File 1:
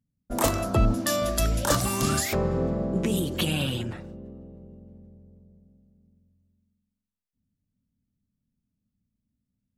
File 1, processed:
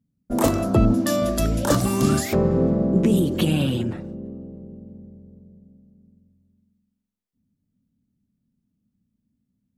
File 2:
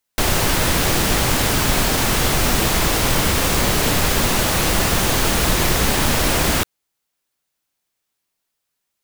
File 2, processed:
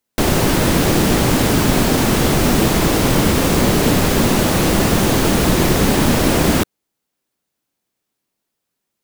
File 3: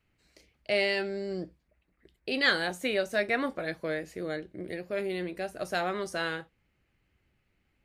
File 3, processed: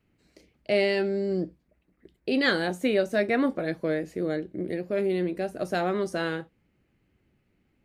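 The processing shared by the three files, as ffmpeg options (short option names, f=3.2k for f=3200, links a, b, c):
-af "equalizer=f=250:t=o:w=2.6:g=10.5,volume=-1.5dB"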